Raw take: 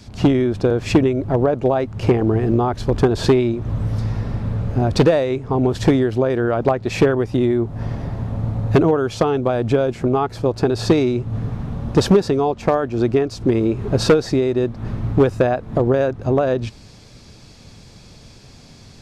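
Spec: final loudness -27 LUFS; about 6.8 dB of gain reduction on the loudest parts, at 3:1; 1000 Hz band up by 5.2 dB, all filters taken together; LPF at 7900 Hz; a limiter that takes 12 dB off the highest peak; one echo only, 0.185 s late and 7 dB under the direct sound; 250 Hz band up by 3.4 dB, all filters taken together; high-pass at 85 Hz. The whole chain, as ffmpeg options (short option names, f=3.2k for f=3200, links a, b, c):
-af "highpass=85,lowpass=7.9k,equalizer=f=250:t=o:g=4,equalizer=f=1k:t=o:g=7,acompressor=threshold=-15dB:ratio=3,alimiter=limit=-12.5dB:level=0:latency=1,aecho=1:1:185:0.447,volume=-4.5dB"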